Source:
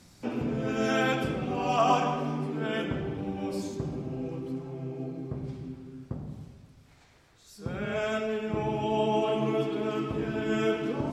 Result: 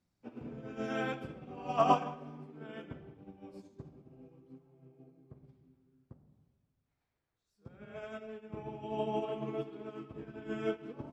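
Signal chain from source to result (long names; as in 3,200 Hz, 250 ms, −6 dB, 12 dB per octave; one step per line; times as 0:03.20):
high-shelf EQ 3,600 Hz −9 dB
expander for the loud parts 2.5 to 1, over −37 dBFS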